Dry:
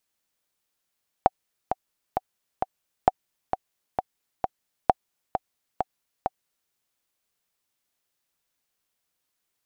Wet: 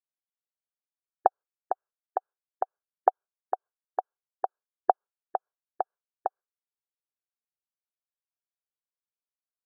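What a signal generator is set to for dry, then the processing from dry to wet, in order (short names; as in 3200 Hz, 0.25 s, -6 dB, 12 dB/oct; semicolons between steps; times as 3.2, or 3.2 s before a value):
metronome 132 bpm, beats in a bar 4, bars 3, 754 Hz, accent 8 dB -2.5 dBFS
brick-wall FIR band-pass 360–1700 Hz; gate with hold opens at -59 dBFS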